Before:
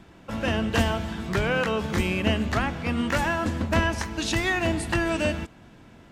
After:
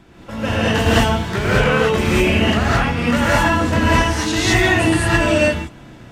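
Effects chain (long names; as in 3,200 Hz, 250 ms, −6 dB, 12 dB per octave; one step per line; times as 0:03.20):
reverb whose tail is shaped and stops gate 240 ms rising, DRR −7.5 dB
level +1.5 dB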